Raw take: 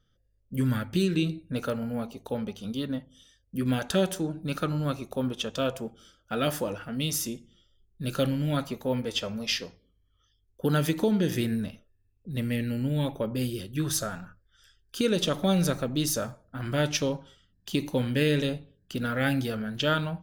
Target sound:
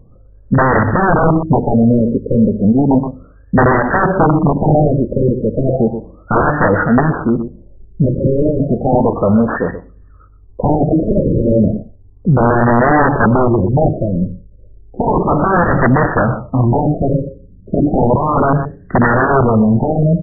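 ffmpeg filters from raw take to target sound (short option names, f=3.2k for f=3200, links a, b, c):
-af "aeval=exprs='(mod(16.8*val(0)+1,2)-1)/16.8':c=same,aecho=1:1:123:0.158,alimiter=level_in=29.5dB:limit=-1dB:release=50:level=0:latency=1,afftfilt=real='re*lt(b*sr/1024,590*pow(2000/590,0.5+0.5*sin(2*PI*0.33*pts/sr)))':imag='im*lt(b*sr/1024,590*pow(2000/590,0.5+0.5*sin(2*PI*0.33*pts/sr)))':win_size=1024:overlap=0.75,volume=-2.5dB"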